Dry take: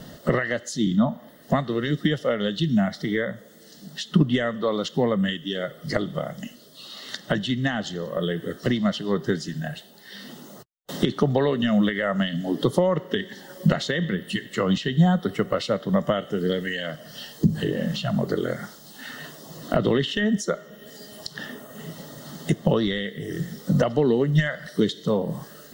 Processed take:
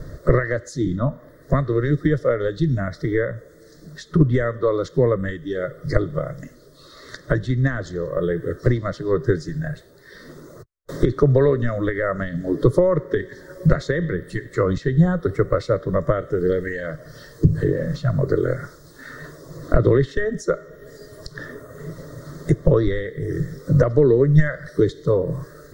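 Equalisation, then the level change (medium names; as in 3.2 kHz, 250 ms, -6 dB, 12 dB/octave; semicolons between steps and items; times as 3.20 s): RIAA curve playback; peaking EQ 14 kHz +5.5 dB 2.6 oct; static phaser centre 790 Hz, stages 6; +3.0 dB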